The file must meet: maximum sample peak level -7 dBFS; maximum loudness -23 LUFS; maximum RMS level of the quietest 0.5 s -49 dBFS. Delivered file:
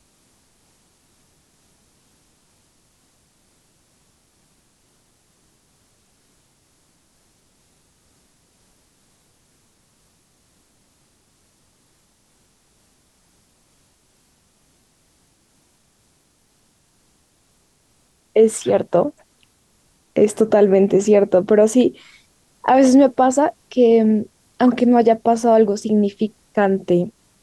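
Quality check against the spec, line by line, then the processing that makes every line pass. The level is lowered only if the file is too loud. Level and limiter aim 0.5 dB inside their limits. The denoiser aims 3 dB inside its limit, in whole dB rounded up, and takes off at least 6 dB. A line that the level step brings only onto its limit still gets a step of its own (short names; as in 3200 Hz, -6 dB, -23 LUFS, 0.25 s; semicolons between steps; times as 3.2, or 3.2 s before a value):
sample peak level -3.5 dBFS: fail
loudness -16.5 LUFS: fail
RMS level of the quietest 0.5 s -61 dBFS: OK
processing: gain -7 dB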